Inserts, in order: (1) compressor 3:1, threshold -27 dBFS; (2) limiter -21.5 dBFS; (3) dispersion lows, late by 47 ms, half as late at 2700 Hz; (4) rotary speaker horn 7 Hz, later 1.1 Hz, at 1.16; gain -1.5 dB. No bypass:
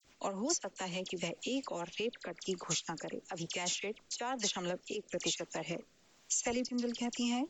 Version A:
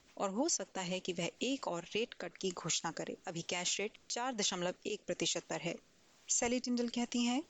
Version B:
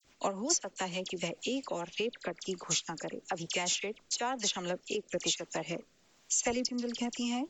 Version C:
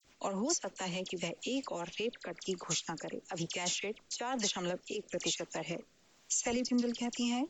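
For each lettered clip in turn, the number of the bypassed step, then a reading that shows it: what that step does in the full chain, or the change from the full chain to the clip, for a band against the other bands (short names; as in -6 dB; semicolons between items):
3, crest factor change -3.0 dB; 2, mean gain reduction 1.5 dB; 1, mean gain reduction 4.0 dB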